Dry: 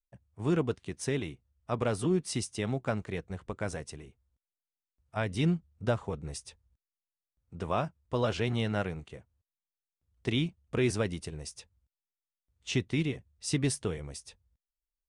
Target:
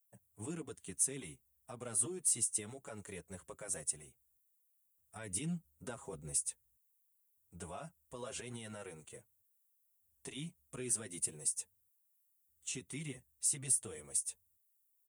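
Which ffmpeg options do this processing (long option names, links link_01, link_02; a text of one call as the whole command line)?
ffmpeg -i in.wav -filter_complex "[0:a]highpass=frequency=170:poles=1,highshelf=frequency=6400:gain=8.5,alimiter=level_in=3.5dB:limit=-24dB:level=0:latency=1:release=132,volume=-3.5dB,aphaser=in_gain=1:out_gain=1:delay=2.2:decay=0.21:speed=0.17:type=triangular,aexciter=amount=4.7:drive=8.8:freq=7000,asplit=2[link_01][link_02];[link_02]adelay=6.3,afreqshift=-0.43[link_03];[link_01][link_03]amix=inputs=2:normalize=1,volume=-4.5dB" out.wav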